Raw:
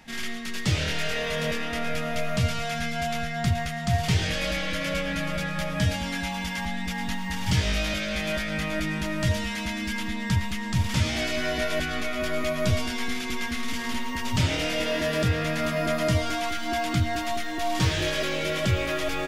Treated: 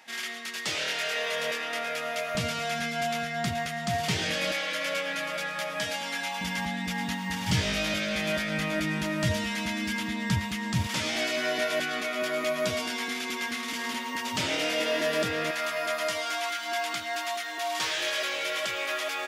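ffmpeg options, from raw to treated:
-af "asetnsamples=n=441:p=0,asendcmd='2.35 highpass f 210;4.52 highpass f 470;6.41 highpass f 120;10.87 highpass f 300;15.51 highpass f 720',highpass=500"

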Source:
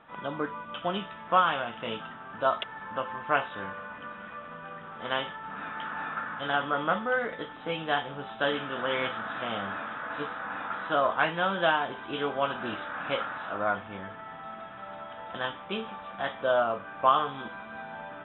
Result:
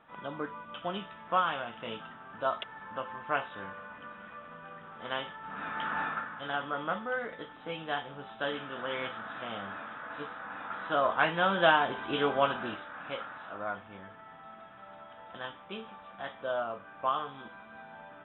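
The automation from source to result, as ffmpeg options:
-af "volume=11dB,afade=t=in:st=5.37:d=0.61:silence=0.398107,afade=t=out:st=5.98:d=0.32:silence=0.354813,afade=t=in:st=10.58:d=1.2:silence=0.398107,afade=t=out:st=12.4:d=0.44:silence=0.316228"

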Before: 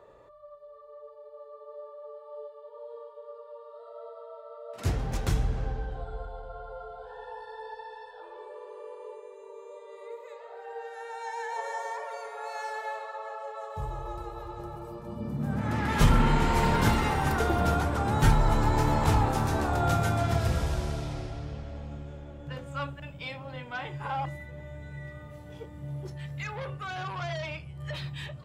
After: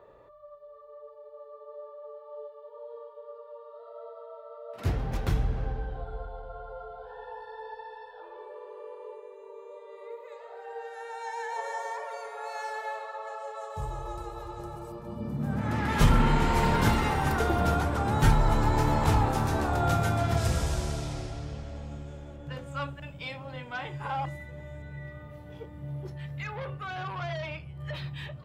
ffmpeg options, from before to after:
-af "asetnsamples=n=441:p=0,asendcmd='10.32 equalizer g 0;13.27 equalizer g 7;14.92 equalizer g -1;20.37 equalizer g 7.5;22.36 equalizer g 1;24.82 equalizer g -8.5',equalizer=f=7.7k:t=o:w=1.3:g=-9.5"

